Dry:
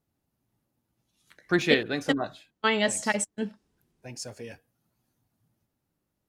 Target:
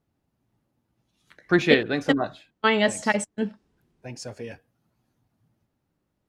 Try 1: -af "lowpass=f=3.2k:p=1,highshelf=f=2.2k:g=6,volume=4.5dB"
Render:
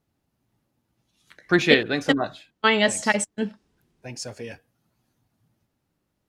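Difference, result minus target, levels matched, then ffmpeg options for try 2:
4000 Hz band +2.5 dB
-af "lowpass=f=3.2k:p=1,volume=4.5dB"

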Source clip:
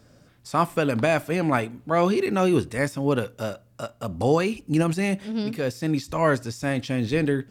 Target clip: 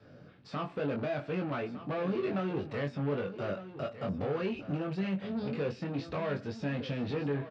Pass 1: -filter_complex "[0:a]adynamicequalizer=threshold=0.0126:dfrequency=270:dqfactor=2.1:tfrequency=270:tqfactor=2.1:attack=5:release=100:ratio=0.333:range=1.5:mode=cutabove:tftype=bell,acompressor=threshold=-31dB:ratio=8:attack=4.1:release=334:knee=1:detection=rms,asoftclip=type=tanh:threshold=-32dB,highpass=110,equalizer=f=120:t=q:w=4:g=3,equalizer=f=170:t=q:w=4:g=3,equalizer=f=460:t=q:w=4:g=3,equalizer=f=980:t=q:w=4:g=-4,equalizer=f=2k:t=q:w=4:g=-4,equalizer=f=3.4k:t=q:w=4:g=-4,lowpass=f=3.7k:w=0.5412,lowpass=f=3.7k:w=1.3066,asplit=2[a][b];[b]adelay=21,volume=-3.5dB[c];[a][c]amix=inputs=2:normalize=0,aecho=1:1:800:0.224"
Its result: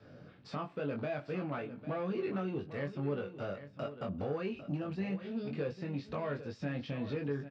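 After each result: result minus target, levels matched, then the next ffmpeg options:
compressor: peak gain reduction +7.5 dB; echo 0.406 s early
-filter_complex "[0:a]adynamicequalizer=threshold=0.0126:dfrequency=270:dqfactor=2.1:tfrequency=270:tqfactor=2.1:attack=5:release=100:ratio=0.333:range=1.5:mode=cutabove:tftype=bell,acompressor=threshold=-22.5dB:ratio=8:attack=4.1:release=334:knee=1:detection=rms,asoftclip=type=tanh:threshold=-32dB,highpass=110,equalizer=f=120:t=q:w=4:g=3,equalizer=f=170:t=q:w=4:g=3,equalizer=f=460:t=q:w=4:g=3,equalizer=f=980:t=q:w=4:g=-4,equalizer=f=2k:t=q:w=4:g=-4,equalizer=f=3.4k:t=q:w=4:g=-4,lowpass=f=3.7k:w=0.5412,lowpass=f=3.7k:w=1.3066,asplit=2[a][b];[b]adelay=21,volume=-3.5dB[c];[a][c]amix=inputs=2:normalize=0,aecho=1:1:800:0.224"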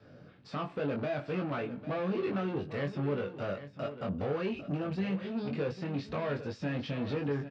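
echo 0.406 s early
-filter_complex "[0:a]adynamicequalizer=threshold=0.0126:dfrequency=270:dqfactor=2.1:tfrequency=270:tqfactor=2.1:attack=5:release=100:ratio=0.333:range=1.5:mode=cutabove:tftype=bell,acompressor=threshold=-22.5dB:ratio=8:attack=4.1:release=334:knee=1:detection=rms,asoftclip=type=tanh:threshold=-32dB,highpass=110,equalizer=f=120:t=q:w=4:g=3,equalizer=f=170:t=q:w=4:g=3,equalizer=f=460:t=q:w=4:g=3,equalizer=f=980:t=q:w=4:g=-4,equalizer=f=2k:t=q:w=4:g=-4,equalizer=f=3.4k:t=q:w=4:g=-4,lowpass=f=3.7k:w=0.5412,lowpass=f=3.7k:w=1.3066,asplit=2[a][b];[b]adelay=21,volume=-3.5dB[c];[a][c]amix=inputs=2:normalize=0,aecho=1:1:1206:0.224"

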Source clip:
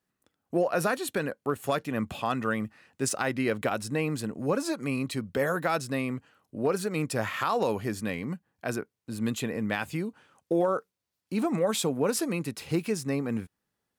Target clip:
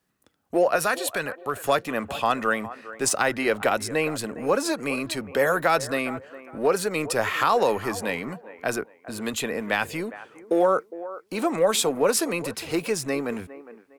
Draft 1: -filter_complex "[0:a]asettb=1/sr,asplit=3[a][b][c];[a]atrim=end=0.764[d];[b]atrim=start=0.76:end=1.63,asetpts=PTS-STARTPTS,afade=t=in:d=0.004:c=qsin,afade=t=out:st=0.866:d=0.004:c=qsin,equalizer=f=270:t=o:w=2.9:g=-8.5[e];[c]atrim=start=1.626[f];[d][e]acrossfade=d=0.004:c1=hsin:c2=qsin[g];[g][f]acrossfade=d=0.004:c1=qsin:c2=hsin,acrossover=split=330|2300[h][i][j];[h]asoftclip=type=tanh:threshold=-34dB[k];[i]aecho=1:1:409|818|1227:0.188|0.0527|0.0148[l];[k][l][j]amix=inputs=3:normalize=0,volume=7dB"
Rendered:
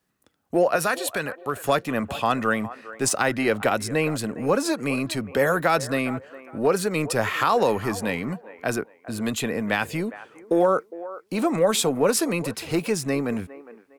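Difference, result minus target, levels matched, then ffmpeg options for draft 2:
soft clip: distortion -6 dB
-filter_complex "[0:a]asettb=1/sr,asplit=3[a][b][c];[a]atrim=end=0.764[d];[b]atrim=start=0.76:end=1.63,asetpts=PTS-STARTPTS,afade=t=in:d=0.004:c=qsin,afade=t=out:st=0.866:d=0.004:c=qsin,equalizer=f=270:t=o:w=2.9:g=-8.5[e];[c]atrim=start=1.626[f];[d][e]acrossfade=d=0.004:c1=hsin:c2=qsin[g];[g][f]acrossfade=d=0.004:c1=qsin:c2=hsin,acrossover=split=330|2300[h][i][j];[h]asoftclip=type=tanh:threshold=-44.5dB[k];[i]aecho=1:1:409|818|1227:0.188|0.0527|0.0148[l];[k][l][j]amix=inputs=3:normalize=0,volume=7dB"

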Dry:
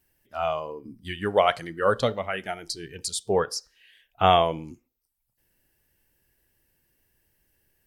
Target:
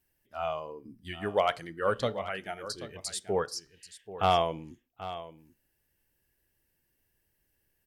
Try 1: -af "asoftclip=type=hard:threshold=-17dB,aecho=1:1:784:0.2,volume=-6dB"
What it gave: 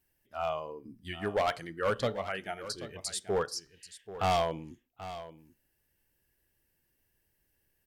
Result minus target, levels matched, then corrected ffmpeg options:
hard clip: distortion +17 dB
-af "asoftclip=type=hard:threshold=-8.5dB,aecho=1:1:784:0.2,volume=-6dB"

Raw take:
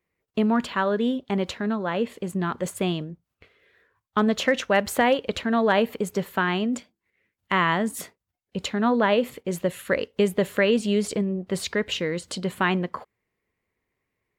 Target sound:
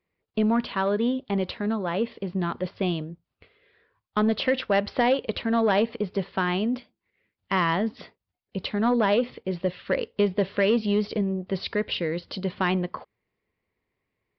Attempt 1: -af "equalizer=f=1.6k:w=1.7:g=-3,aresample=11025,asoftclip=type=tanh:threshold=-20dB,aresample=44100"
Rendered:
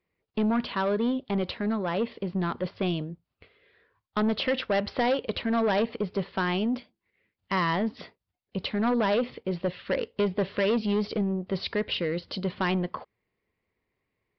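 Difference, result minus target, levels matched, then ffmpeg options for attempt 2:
soft clip: distortion +9 dB
-af "equalizer=f=1.6k:w=1.7:g=-3,aresample=11025,asoftclip=type=tanh:threshold=-12.5dB,aresample=44100"

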